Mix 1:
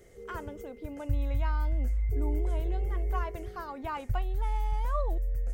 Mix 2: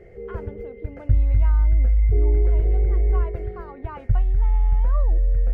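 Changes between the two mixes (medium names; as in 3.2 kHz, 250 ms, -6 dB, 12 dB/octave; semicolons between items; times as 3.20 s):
background +11.5 dB; master: add distance through air 390 m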